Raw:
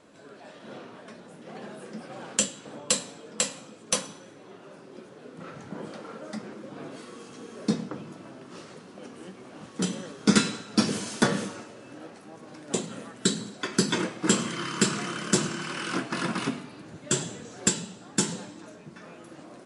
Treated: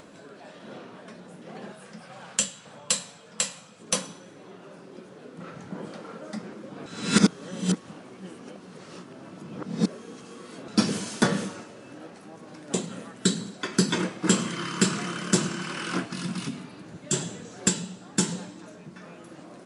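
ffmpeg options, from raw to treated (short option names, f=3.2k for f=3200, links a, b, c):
-filter_complex "[0:a]asettb=1/sr,asplit=3[a][b][c];[a]atrim=end=1.724[d];[b]atrim=start=1.72:end=3.8,asetpts=PTS-STARTPTS,afade=t=in:d=0.004:c=qsin,afade=t=out:st=2.076:d=0.004:c=qsin,equalizer=f=320:w=1.1:g=-13[e];[c]atrim=start=3.796[f];[d][e]acrossfade=d=0.004:c1=hsin:c2=qsin[g];[g][f]acrossfade=d=0.004:c1=qsin:c2=hsin,asettb=1/sr,asplit=3[h][i][j];[h]atrim=end=16.054[k];[i]atrim=start=16.05:end=17.13,asetpts=PTS-STARTPTS,afade=t=in:d=0.004:c=qsin,afade=t=out:st=1.076:d=0.004:c=qsin,acrossover=split=250|3000[l][m][n];[m]acompressor=threshold=-40dB:ratio=6:attack=3.2:release=140:knee=2.83:detection=peak[o];[l][o][n]amix=inputs=3:normalize=0[p];[j]atrim=start=17.126[q];[k][p]acrossfade=d=0.004:c1=hsin:c2=qsin[r];[r][q]acrossfade=d=0.004:c1=qsin:c2=hsin,asplit=3[s][t][u];[s]atrim=end=6.862[v];[t]atrim=start=6.858:end=10.682,asetpts=PTS-STARTPTS,areverse[w];[u]atrim=start=10.678[x];[v][w]acrossfade=d=0.004:c1=hsin:c2=hsin[y];[y][x]acrossfade=d=0.004:c1=hsin:c2=hsin,equalizer=f=180:t=o:w=0.2:g=6,acompressor=mode=upward:threshold=-42dB:ratio=2.5"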